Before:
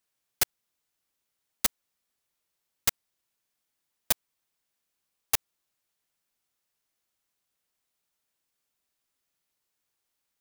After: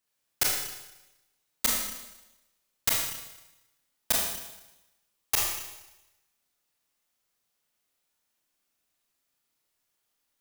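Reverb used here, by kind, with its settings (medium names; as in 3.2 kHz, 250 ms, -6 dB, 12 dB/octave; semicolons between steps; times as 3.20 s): Schroeder reverb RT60 0.98 s, combs from 26 ms, DRR -3 dB; trim -1.5 dB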